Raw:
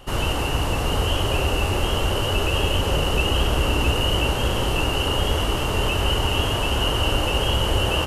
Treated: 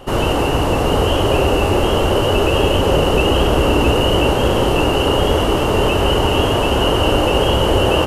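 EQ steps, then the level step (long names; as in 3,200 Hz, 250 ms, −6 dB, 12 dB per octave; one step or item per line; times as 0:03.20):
parametric band 410 Hz +9.5 dB 3 octaves
+2.0 dB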